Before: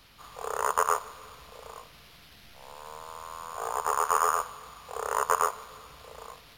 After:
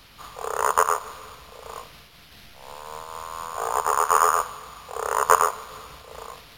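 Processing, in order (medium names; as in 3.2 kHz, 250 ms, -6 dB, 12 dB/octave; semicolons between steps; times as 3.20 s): random flutter of the level, depth 60%; trim +9 dB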